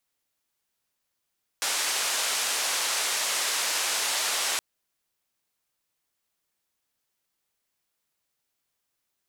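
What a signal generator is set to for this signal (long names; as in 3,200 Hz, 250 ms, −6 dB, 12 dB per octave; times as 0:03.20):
band-limited noise 570–8,600 Hz, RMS −27.5 dBFS 2.97 s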